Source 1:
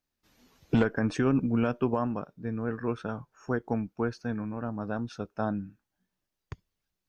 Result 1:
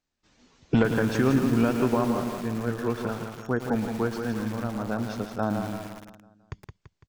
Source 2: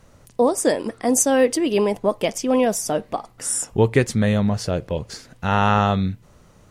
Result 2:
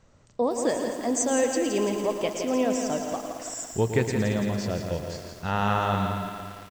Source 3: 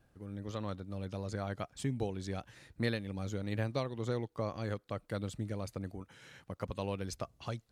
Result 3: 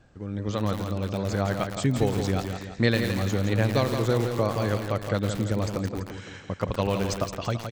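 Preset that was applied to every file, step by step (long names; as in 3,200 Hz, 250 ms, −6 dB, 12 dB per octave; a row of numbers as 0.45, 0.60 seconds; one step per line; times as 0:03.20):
linear-phase brick-wall low-pass 8,400 Hz
repeating echo 168 ms, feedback 49%, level −7 dB
feedback echo at a low word length 113 ms, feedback 80%, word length 6 bits, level −9.5 dB
loudness normalisation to −27 LKFS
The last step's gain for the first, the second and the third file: +2.5, −7.5, +11.0 decibels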